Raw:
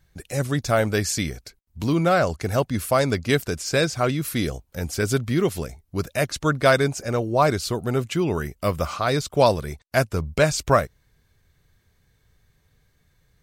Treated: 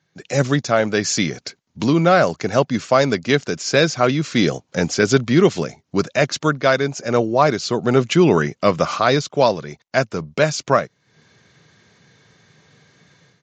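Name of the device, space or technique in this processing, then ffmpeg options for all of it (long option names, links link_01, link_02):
Bluetooth headset: -af "highpass=frequency=140:width=0.5412,highpass=frequency=140:width=1.3066,dynaudnorm=framelen=160:gausssize=3:maxgain=16.5dB,aresample=16000,aresample=44100,volume=-1dB" -ar 16000 -c:a sbc -b:a 64k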